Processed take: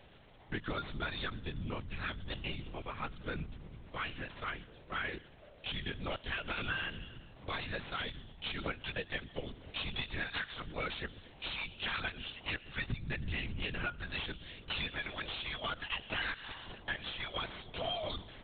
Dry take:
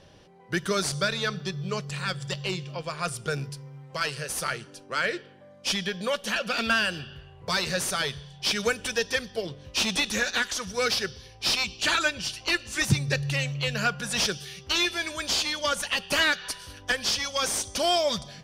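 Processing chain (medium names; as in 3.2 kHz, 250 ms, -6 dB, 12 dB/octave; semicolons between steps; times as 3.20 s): dynamic bell 540 Hz, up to -5 dB, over -42 dBFS, Q 1.3; crackle 580 per s -40 dBFS; compression 6:1, threshold -27 dBFS, peak gain reduction 11 dB; LPC vocoder at 8 kHz whisper; 16.14–16.75 s: three bands compressed up and down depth 40%; trim -6 dB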